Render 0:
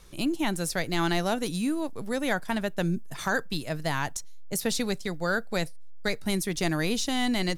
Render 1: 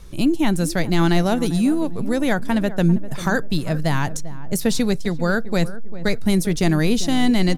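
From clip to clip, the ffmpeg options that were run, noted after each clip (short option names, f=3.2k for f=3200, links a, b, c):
-filter_complex "[0:a]lowshelf=f=350:g=10,asplit=2[a][b];[b]adelay=396,lowpass=f=990:p=1,volume=-14dB,asplit=2[c][d];[d]adelay=396,lowpass=f=990:p=1,volume=0.43,asplit=2[e][f];[f]adelay=396,lowpass=f=990:p=1,volume=0.43,asplit=2[g][h];[h]adelay=396,lowpass=f=990:p=1,volume=0.43[i];[a][c][e][g][i]amix=inputs=5:normalize=0,volume=3.5dB"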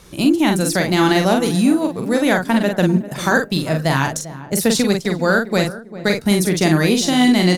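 -filter_complex "[0:a]highpass=f=230:p=1,asplit=2[a][b];[b]adelay=44,volume=-4.5dB[c];[a][c]amix=inputs=2:normalize=0,volume=5dB"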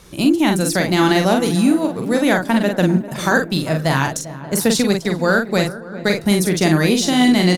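-filter_complex "[0:a]asplit=2[a][b];[b]adelay=584,lowpass=f=1.3k:p=1,volume=-18dB,asplit=2[c][d];[d]adelay=584,lowpass=f=1.3k:p=1,volume=0.47,asplit=2[e][f];[f]adelay=584,lowpass=f=1.3k:p=1,volume=0.47,asplit=2[g][h];[h]adelay=584,lowpass=f=1.3k:p=1,volume=0.47[i];[a][c][e][g][i]amix=inputs=5:normalize=0"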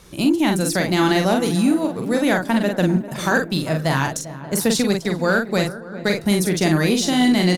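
-af "asoftclip=type=tanh:threshold=-3dB,volume=-2dB"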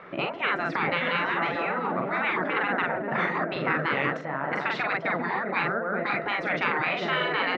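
-af "highpass=260,equalizer=f=320:t=q:w=4:g=-4,equalizer=f=660:t=q:w=4:g=9,equalizer=f=1.3k:t=q:w=4:g=9,equalizer=f=2k:t=q:w=4:g=7,lowpass=f=2.3k:w=0.5412,lowpass=f=2.3k:w=1.3066,afftfilt=real='re*lt(hypot(re,im),0.224)':imag='im*lt(hypot(re,im),0.224)':win_size=1024:overlap=0.75,volume=4dB"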